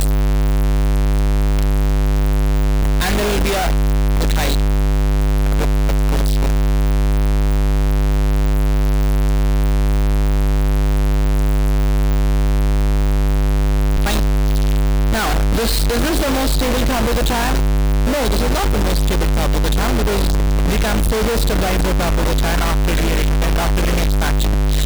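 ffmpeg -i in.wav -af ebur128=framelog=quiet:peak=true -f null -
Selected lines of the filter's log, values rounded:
Integrated loudness:
  I:         -17.7 LUFS
  Threshold: -27.7 LUFS
Loudness range:
  LRA:         0.6 LU
  Threshold: -37.7 LUFS
  LRA low:   -18.0 LUFS
  LRA high:  -17.4 LUFS
True peak:
  Peak:      -10.3 dBFS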